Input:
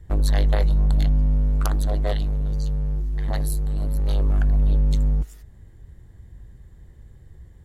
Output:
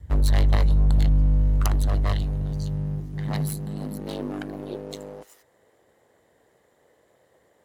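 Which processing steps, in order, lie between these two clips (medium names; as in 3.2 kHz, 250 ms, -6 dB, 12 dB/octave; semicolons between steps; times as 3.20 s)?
comb filter that takes the minimum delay 1 ms; high-pass sweep 68 Hz -> 500 Hz, 2.08–5.20 s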